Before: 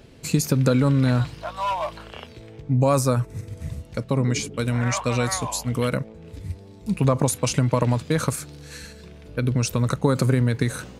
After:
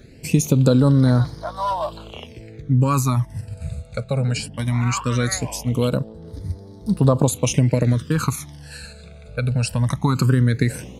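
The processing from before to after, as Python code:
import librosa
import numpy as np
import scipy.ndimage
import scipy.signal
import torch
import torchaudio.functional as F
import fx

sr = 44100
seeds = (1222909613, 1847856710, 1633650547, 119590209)

y = fx.phaser_stages(x, sr, stages=12, low_hz=310.0, high_hz=2700.0, hz=0.19, feedback_pct=5)
y = y * librosa.db_to_amplitude(4.0)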